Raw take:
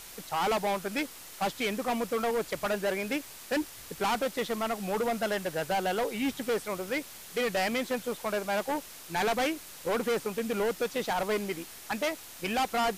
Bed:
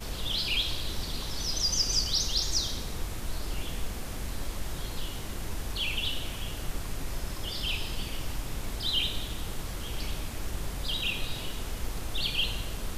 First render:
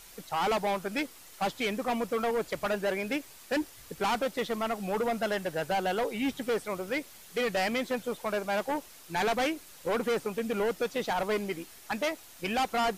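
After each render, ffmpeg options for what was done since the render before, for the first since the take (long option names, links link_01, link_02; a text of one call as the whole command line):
ffmpeg -i in.wav -af "afftdn=noise_reduction=6:noise_floor=-47" out.wav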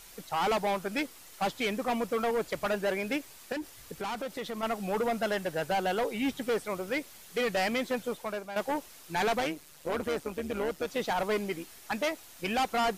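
ffmpeg -i in.wav -filter_complex "[0:a]asettb=1/sr,asplit=3[link_01][link_02][link_03];[link_01]atrim=end=3.524[link_04];[link_02]atrim=start=3.52:end=4.63,asetpts=PTS-STARTPTS,afade=type=in:duration=0.004:curve=qsin,afade=type=out:start_time=1.106:duration=0.004:curve=qsin,acompressor=threshold=-33dB:ratio=6:attack=3.2:release=140:knee=1:detection=peak[link_05];[link_03]atrim=start=4.626[link_06];[link_04][link_05]acrossfade=duration=0.004:curve1=hsin:curve2=qsin[link_07];[link_07][link_06]acrossfade=duration=0.004:curve1=qsin:curve2=hsin,asettb=1/sr,asplit=3[link_08][link_09][link_10];[link_08]atrim=end=9.404[link_11];[link_09]atrim=start=9.4:end=10.88,asetpts=PTS-STARTPTS,afade=type=in:duration=0.004:curve=qsin,afade=type=out:start_time=1.476:duration=0.004:curve=qsin,tremolo=f=150:d=0.667[link_12];[link_10]atrim=start=10.876[link_13];[link_11][link_12]acrossfade=duration=0.004:curve1=hsin:curve2=qsin[link_14];[link_14][link_13]acrossfade=duration=0.004:curve1=qsin:curve2=hsin,asplit=2[link_15][link_16];[link_15]atrim=end=8.56,asetpts=PTS-STARTPTS,afade=type=out:start_time=8.07:duration=0.49:silence=0.266073[link_17];[link_16]atrim=start=8.56,asetpts=PTS-STARTPTS,afade=type=in:duration=0.004:curve=hsin:silence=0.266073[link_18];[link_17][link_18]concat=n=2:v=0:a=1" out.wav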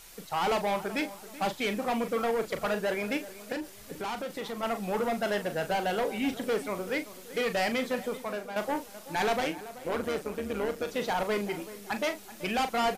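ffmpeg -i in.wav -filter_complex "[0:a]asplit=2[link_01][link_02];[link_02]adelay=39,volume=-9.5dB[link_03];[link_01][link_03]amix=inputs=2:normalize=0,asplit=2[link_04][link_05];[link_05]adelay=382,lowpass=frequency=2000:poles=1,volume=-15dB,asplit=2[link_06][link_07];[link_07]adelay=382,lowpass=frequency=2000:poles=1,volume=0.39,asplit=2[link_08][link_09];[link_09]adelay=382,lowpass=frequency=2000:poles=1,volume=0.39,asplit=2[link_10][link_11];[link_11]adelay=382,lowpass=frequency=2000:poles=1,volume=0.39[link_12];[link_04][link_06][link_08][link_10][link_12]amix=inputs=5:normalize=0" out.wav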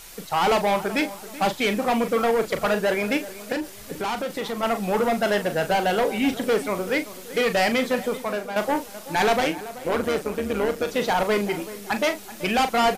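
ffmpeg -i in.wav -af "volume=7.5dB" out.wav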